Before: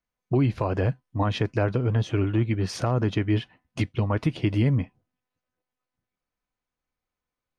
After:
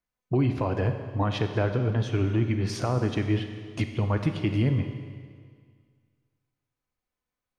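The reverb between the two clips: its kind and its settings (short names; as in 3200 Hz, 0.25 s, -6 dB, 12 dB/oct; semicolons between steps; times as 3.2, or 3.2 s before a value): Schroeder reverb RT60 1.9 s, combs from 31 ms, DRR 7 dB; gain -2 dB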